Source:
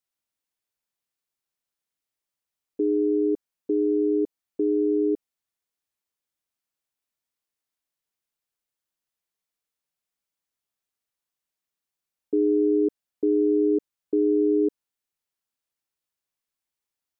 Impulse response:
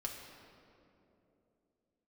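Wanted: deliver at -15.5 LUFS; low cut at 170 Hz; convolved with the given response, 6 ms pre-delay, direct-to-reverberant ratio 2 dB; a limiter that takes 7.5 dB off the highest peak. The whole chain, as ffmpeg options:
-filter_complex "[0:a]highpass=170,alimiter=limit=0.075:level=0:latency=1,asplit=2[s0][s1];[1:a]atrim=start_sample=2205,adelay=6[s2];[s1][s2]afir=irnorm=-1:irlink=0,volume=0.841[s3];[s0][s3]amix=inputs=2:normalize=0,volume=4.47"

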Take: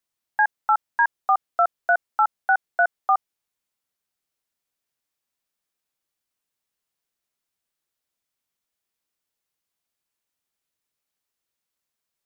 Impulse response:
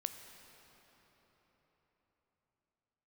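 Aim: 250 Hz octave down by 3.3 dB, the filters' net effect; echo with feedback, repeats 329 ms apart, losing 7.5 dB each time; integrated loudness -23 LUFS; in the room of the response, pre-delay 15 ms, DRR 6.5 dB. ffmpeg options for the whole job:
-filter_complex "[0:a]equalizer=f=250:t=o:g=-5.5,aecho=1:1:329|658|987|1316|1645:0.422|0.177|0.0744|0.0312|0.0131,asplit=2[s0][s1];[1:a]atrim=start_sample=2205,adelay=15[s2];[s1][s2]afir=irnorm=-1:irlink=0,volume=0.531[s3];[s0][s3]amix=inputs=2:normalize=0,volume=0.841"

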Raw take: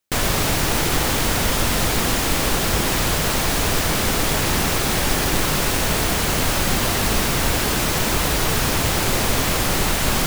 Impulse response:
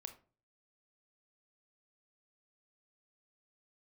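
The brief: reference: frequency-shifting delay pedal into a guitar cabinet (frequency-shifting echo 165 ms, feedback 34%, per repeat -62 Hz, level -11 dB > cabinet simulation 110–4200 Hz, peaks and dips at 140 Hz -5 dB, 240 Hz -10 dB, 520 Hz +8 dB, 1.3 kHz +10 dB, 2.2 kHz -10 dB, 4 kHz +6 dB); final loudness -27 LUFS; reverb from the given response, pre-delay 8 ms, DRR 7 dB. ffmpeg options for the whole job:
-filter_complex "[0:a]asplit=2[s0][s1];[1:a]atrim=start_sample=2205,adelay=8[s2];[s1][s2]afir=irnorm=-1:irlink=0,volume=0.794[s3];[s0][s3]amix=inputs=2:normalize=0,asplit=5[s4][s5][s6][s7][s8];[s5]adelay=165,afreqshift=-62,volume=0.282[s9];[s6]adelay=330,afreqshift=-124,volume=0.0955[s10];[s7]adelay=495,afreqshift=-186,volume=0.0327[s11];[s8]adelay=660,afreqshift=-248,volume=0.0111[s12];[s4][s9][s10][s11][s12]amix=inputs=5:normalize=0,highpass=110,equalizer=f=140:t=q:w=4:g=-5,equalizer=f=240:t=q:w=4:g=-10,equalizer=f=520:t=q:w=4:g=8,equalizer=f=1300:t=q:w=4:g=10,equalizer=f=2200:t=q:w=4:g=-10,equalizer=f=4000:t=q:w=4:g=6,lowpass=f=4200:w=0.5412,lowpass=f=4200:w=1.3066,volume=0.398"

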